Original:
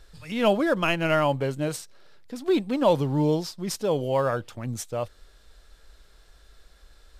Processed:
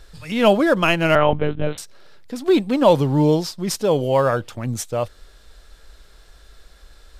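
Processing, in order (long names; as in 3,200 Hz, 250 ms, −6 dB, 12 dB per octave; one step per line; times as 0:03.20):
0:01.15–0:01.78: one-pitch LPC vocoder at 8 kHz 150 Hz
level +6.5 dB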